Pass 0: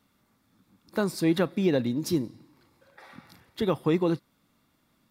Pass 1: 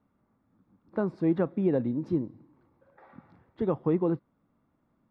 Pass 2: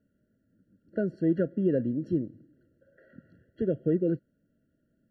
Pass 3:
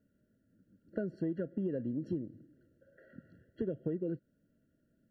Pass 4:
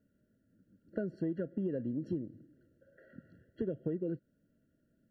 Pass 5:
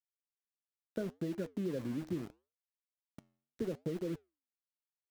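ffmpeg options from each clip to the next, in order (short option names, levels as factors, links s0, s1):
-af "lowpass=1100,volume=0.841"
-af "afftfilt=real='re*eq(mod(floor(b*sr/1024/670),2),0)':imag='im*eq(mod(floor(b*sr/1024/670),2),0)':win_size=1024:overlap=0.75"
-af "acompressor=threshold=0.0316:ratio=10,volume=0.841"
-af anull
-af "aeval=exprs='val(0)*gte(abs(val(0)),0.00668)':c=same,flanger=delay=4.4:depth=7:regen=-86:speed=0.75:shape=sinusoidal,volume=1.41"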